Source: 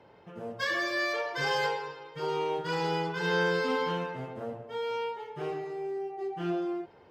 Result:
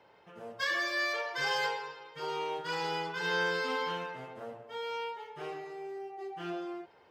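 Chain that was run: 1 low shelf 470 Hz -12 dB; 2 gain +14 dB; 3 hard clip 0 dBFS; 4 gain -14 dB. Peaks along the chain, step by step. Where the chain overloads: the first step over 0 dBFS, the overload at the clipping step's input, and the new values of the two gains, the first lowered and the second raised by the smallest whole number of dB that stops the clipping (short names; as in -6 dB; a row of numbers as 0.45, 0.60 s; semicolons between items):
-19.5, -5.5, -5.5, -19.5 dBFS; no overload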